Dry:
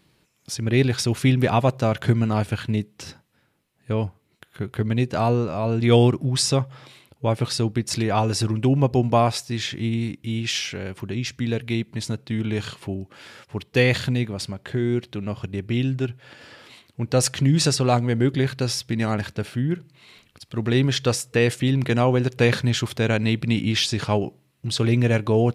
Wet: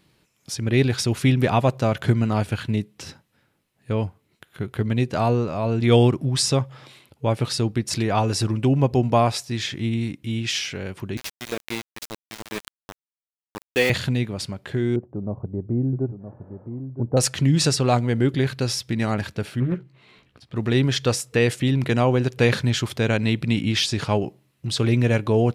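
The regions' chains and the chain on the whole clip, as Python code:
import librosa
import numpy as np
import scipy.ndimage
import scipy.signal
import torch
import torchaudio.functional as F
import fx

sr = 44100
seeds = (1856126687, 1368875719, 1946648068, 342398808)

y = fx.chain(x, sr, fx.highpass(hz=310.0, slope=12),
    fx.sample_gate(floor_db=-25.5), at=(11.17, 13.9))
y = fx.chain(y, sr, fx.cheby2_lowpass(hz=4900.0, order=4, stop_db=80),
    fx.echo_single(ms=967, db=-10.0), at=(14.96, 17.17))
y = fx.chain(y, sr, fx.lowpass(hz=1700.0, slope=6),
    fx.doubler(ms=16.0, db=-6.0),
    fx.doppler_dist(depth_ms=0.47), at=(19.6, 20.56))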